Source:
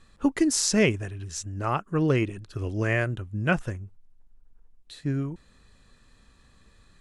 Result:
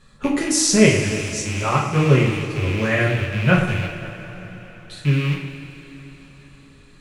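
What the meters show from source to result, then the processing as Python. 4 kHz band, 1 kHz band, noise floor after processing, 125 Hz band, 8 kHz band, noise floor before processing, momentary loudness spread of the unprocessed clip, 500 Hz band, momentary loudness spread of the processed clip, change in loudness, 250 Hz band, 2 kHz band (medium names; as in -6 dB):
+8.0 dB, +7.5 dB, -47 dBFS, +9.5 dB, +7.5 dB, -59 dBFS, 13 LU, +7.5 dB, 20 LU, +7.5 dB, +6.5 dB, +8.0 dB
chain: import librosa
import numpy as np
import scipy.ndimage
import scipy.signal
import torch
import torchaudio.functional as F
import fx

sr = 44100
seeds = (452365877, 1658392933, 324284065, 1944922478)

y = fx.rattle_buzz(x, sr, strikes_db=-37.0, level_db=-24.0)
y = fx.echo_alternate(y, sr, ms=107, hz=2000.0, feedback_pct=71, wet_db=-11.5)
y = fx.rev_double_slope(y, sr, seeds[0], early_s=0.44, late_s=4.8, knee_db=-18, drr_db=-3.0)
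y = F.gain(torch.from_numpy(y), 2.0).numpy()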